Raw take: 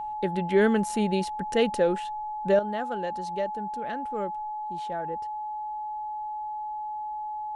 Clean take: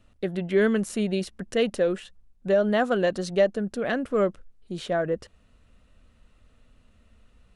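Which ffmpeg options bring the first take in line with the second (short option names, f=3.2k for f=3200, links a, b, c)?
-af "bandreject=f=850:w=30,asetnsamples=n=441:p=0,asendcmd='2.59 volume volume 10dB',volume=0dB"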